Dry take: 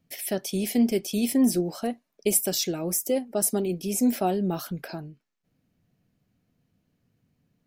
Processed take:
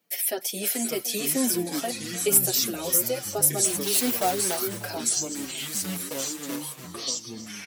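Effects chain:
0:03.64–0:04.83: one scale factor per block 3 bits
high-pass filter 460 Hz 12 dB per octave
high-shelf EQ 11,000 Hz +11 dB
in parallel at 0 dB: downward compressor, threshold −33 dBFS, peak gain reduction 19 dB
on the sum: delay with pitch and tempo change per echo 486 ms, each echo −5 semitones, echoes 3, each echo −6 dB
asymmetric clip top −8 dBFS
on a send: repeating echo 300 ms, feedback 60%, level −17 dB
on the sum: barber-pole flanger 6.3 ms −1.9 Hz
level +1.5 dB

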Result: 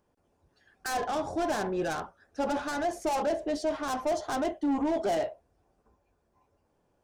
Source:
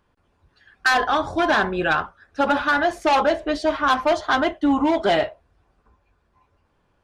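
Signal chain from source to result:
low-shelf EQ 140 Hz −10.5 dB
soft clipping −22 dBFS, distortion −10 dB
flat-topped bell 2,100 Hz −9.5 dB 2.4 octaves
level −1.5 dB

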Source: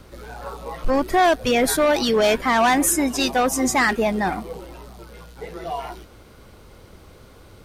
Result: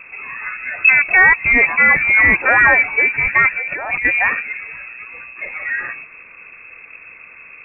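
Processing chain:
0:03.52–0:04.05: compressor whose output falls as the input rises −28 dBFS, ratio −1
voice inversion scrambler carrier 2,600 Hz
level +6 dB

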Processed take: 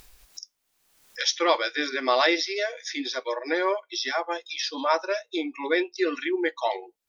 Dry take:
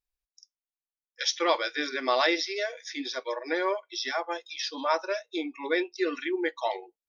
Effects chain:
upward compression, threshold −31 dBFS
level +3 dB

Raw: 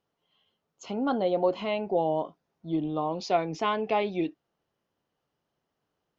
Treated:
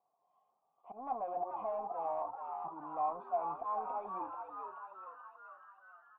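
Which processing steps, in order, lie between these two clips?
high-pass filter 120 Hz 12 dB per octave
volume swells 176 ms
in parallel at −1 dB: downward compressor, threshold −40 dBFS, peak gain reduction 17 dB
on the sum: soft clipping −29.5 dBFS, distortion −8 dB
formant resonators in series a
on a send: echo with shifted repeats 433 ms, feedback 60%, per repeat +91 Hz, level −5.5 dB
on the sum: level +7 dB

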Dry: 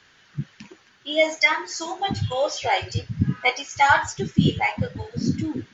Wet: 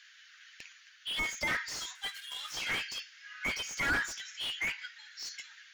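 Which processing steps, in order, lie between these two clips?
0:01.95–0:02.54: running median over 9 samples
Butterworth high-pass 1,500 Hz 36 dB per octave
coupled-rooms reverb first 0.62 s, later 2.3 s, DRR 19.5 dB
slew-rate limiting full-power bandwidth 64 Hz

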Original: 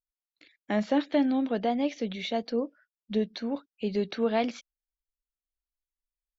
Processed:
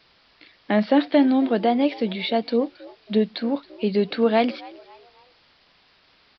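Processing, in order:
high-pass filter 100 Hz
bit-depth reduction 10 bits, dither triangular
on a send: echo with shifted repeats 273 ms, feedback 40%, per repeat +83 Hz, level −21.5 dB
on the sum: downsampling to 11,025 Hz
level +7.5 dB

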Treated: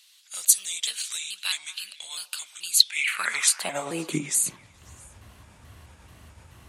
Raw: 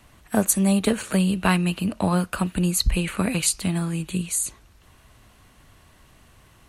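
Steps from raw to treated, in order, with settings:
pitch shifter gated in a rhythm −3 semitones, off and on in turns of 217 ms
high-pass filter sweep 3,900 Hz → 73 Hz, 0:02.75–0:04.92
echo through a band-pass that steps 109 ms, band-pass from 680 Hz, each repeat 0.7 octaves, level −11.5 dB
level +2 dB

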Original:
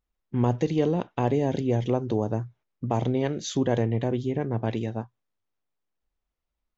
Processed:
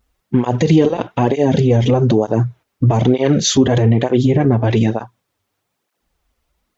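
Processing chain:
boost into a limiter +21 dB
through-zero flanger with one copy inverted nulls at 1.1 Hz, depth 6.6 ms

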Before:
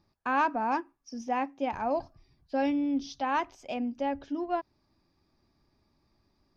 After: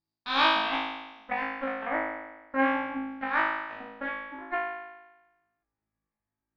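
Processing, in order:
transient designer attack +1 dB, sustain −11 dB
harmonic generator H 3 −12 dB, 7 −27 dB, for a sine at −15 dBFS
low-pass filter sweep 4,400 Hz → 1,800 Hz, 0:00.14–0:01.54
on a send: flutter between parallel walls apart 3.2 metres, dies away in 1.1 s

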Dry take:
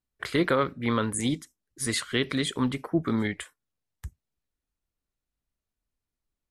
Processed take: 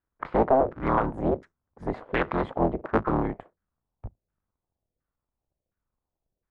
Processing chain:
sub-harmonics by changed cycles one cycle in 3, inverted
auto-filter low-pass saw down 1.4 Hz 520–1,600 Hz

